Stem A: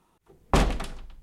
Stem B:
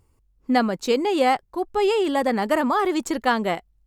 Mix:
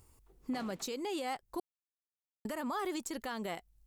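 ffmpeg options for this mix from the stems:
-filter_complex "[0:a]alimiter=limit=-14.5dB:level=0:latency=1,highpass=170,volume=-12dB[a];[1:a]highshelf=f=4.4k:g=12,acompressor=threshold=-24dB:ratio=3,volume=-2dB,asplit=3[b][c][d];[b]atrim=end=1.6,asetpts=PTS-STARTPTS,afade=t=out:st=1.596:d=0.004:c=hsin[e];[c]atrim=start=1.6:end=2.45,asetpts=PTS-STARTPTS,volume=0[f];[d]atrim=start=2.45,asetpts=PTS-STARTPTS,afade=t=in:d=0.004:c=hsin[g];[e][f][g]concat=n=3:v=0:a=1[h];[a][h]amix=inputs=2:normalize=0,alimiter=level_in=4.5dB:limit=-24dB:level=0:latency=1:release=426,volume=-4.5dB"

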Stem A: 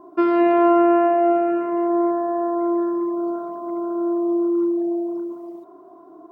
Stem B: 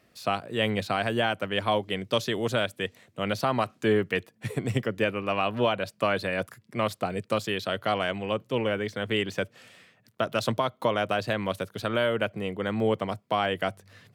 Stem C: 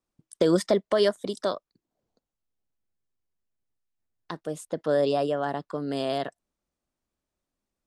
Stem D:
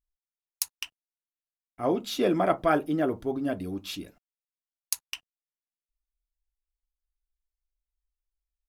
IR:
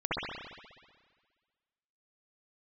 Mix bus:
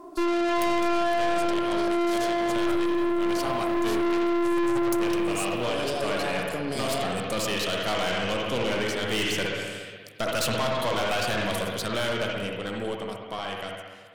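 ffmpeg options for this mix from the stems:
-filter_complex "[0:a]volume=1.5dB[a];[1:a]volume=-11.5dB,asplit=2[b][c];[c]volume=-8.5dB[d];[2:a]deesser=0.8,alimiter=limit=-19.5dB:level=0:latency=1:release=26,adelay=800,volume=-7.5dB,asplit=2[e][f];[f]volume=-12.5dB[g];[3:a]volume=-12dB[h];[4:a]atrim=start_sample=2205[i];[d][g]amix=inputs=2:normalize=0[j];[j][i]afir=irnorm=-1:irlink=0[k];[a][b][e][h][k]amix=inputs=5:normalize=0,equalizer=f=8.8k:t=o:w=2.3:g=15,dynaudnorm=f=200:g=21:m=13dB,aeval=exprs='(tanh(14.1*val(0)+0.45)-tanh(0.45))/14.1':c=same"

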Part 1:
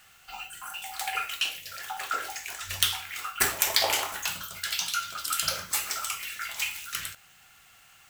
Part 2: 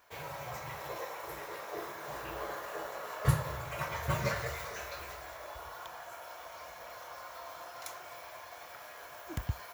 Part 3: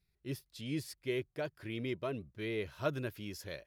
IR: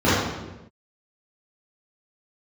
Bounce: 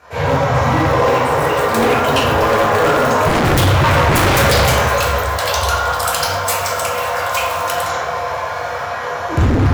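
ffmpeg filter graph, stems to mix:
-filter_complex "[0:a]adelay=750,volume=1dB,asplit=2[a][b];[b]volume=-21.5dB[c];[1:a]lowpass=10k,equalizer=f=290:w=4.3:g=-11.5,volume=2dB,asplit=2[d][e];[e]volume=-5dB[f];[2:a]acrusher=bits=4:dc=4:mix=0:aa=0.000001,volume=-3dB,asplit=2[g][h];[h]volume=-8dB[i];[3:a]atrim=start_sample=2205[j];[c][f][i]amix=inputs=3:normalize=0[k];[k][j]afir=irnorm=-1:irlink=0[l];[a][d][g][l]amix=inputs=4:normalize=0,equalizer=f=360:t=o:w=0.23:g=-7,acontrast=55,aeval=exprs='0.422*(abs(mod(val(0)/0.422+3,4)-2)-1)':c=same"

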